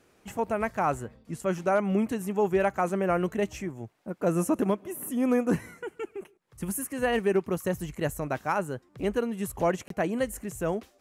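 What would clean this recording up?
repair the gap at 0:09.88, 23 ms

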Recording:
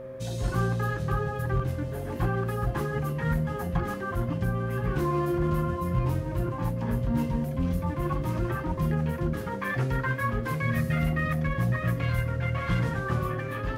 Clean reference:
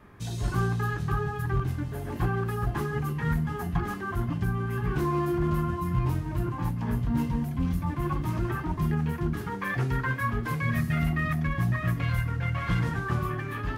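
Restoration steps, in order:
hum removal 127.6 Hz, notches 5
notch filter 530 Hz, Q 30

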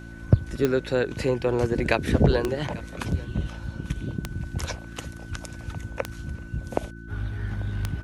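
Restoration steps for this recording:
click removal
hum removal 56.4 Hz, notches 6
notch filter 1,500 Hz, Q 30
echo removal 842 ms −21 dB

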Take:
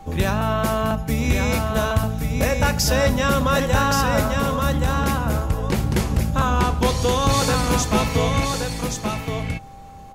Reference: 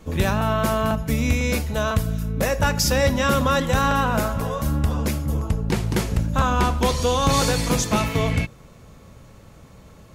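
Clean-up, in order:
notch filter 790 Hz, Q 30
downward expander −19 dBFS, range −21 dB
echo removal 1,124 ms −4.5 dB

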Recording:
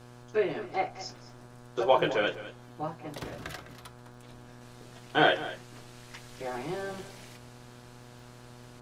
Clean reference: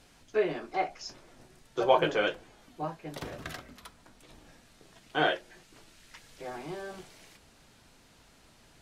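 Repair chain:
click removal
hum removal 121.7 Hz, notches 14
echo removal 206 ms −15 dB
level 0 dB, from 0:04.61 −4 dB

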